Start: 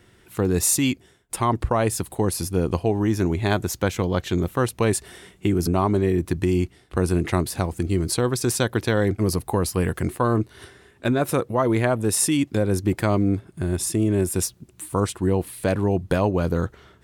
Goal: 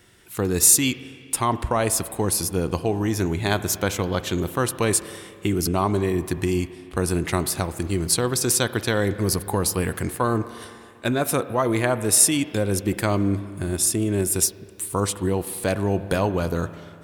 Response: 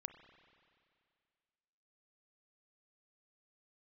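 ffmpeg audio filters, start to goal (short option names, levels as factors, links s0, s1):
-filter_complex "[0:a]highshelf=f=3800:g=7,asplit=2[s0][s1];[1:a]atrim=start_sample=2205,lowshelf=f=460:g=-5[s2];[s1][s2]afir=irnorm=-1:irlink=0,volume=3.55[s3];[s0][s3]amix=inputs=2:normalize=0,volume=0.335"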